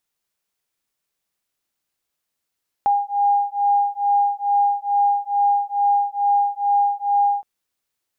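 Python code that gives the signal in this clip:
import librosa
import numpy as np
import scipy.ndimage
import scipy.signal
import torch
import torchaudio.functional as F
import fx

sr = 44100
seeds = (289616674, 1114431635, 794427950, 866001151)

y = fx.two_tone_beats(sr, length_s=4.57, hz=810.0, beat_hz=2.3, level_db=-19.0)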